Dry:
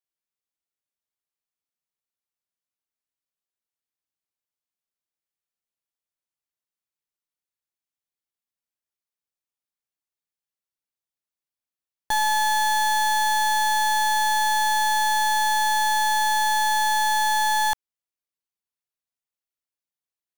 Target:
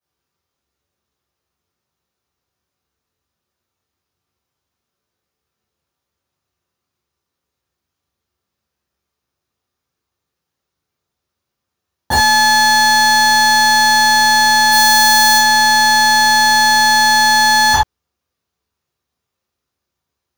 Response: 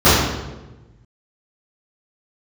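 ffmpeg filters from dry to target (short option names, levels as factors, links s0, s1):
-filter_complex "[0:a]asettb=1/sr,asplit=3[s0][s1][s2];[s0]atrim=end=14.714[s3];[s1]atrim=start=14.71:end=15.37,asetpts=PTS-STARTPTS,afade=t=in:d=0.004:c=qsin,afade=t=out:st=0.656:d=0.004:c=qsin,highshelf=f=8400:g=10.5[s4];[s2]atrim=start=15.366[s5];[s3][s4]acrossfade=d=0.004:c1=hsin:c2=qsin[s6];[s6][s5]acrossfade=d=0.004:c1=qsin:c2=hsin[s7];[1:a]atrim=start_sample=2205,atrim=end_sample=4410[s8];[s7][s8]afir=irnorm=-1:irlink=0,volume=0.335"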